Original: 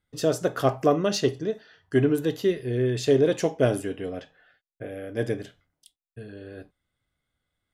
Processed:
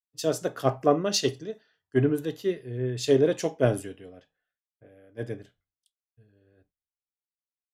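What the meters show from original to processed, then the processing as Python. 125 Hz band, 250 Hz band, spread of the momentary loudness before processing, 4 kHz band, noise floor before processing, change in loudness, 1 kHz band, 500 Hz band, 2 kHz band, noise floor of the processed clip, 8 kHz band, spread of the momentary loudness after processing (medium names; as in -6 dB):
-2.0 dB, -3.0 dB, 19 LU, +1.0 dB, under -85 dBFS, -1.5 dB, -1.0 dB, -2.5 dB, -3.5 dB, under -85 dBFS, +2.0 dB, 17 LU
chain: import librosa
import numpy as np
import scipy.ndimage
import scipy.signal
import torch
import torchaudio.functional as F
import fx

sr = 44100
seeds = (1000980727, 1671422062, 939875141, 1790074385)

y = fx.band_widen(x, sr, depth_pct=100)
y = F.gain(torch.from_numpy(y), -4.5).numpy()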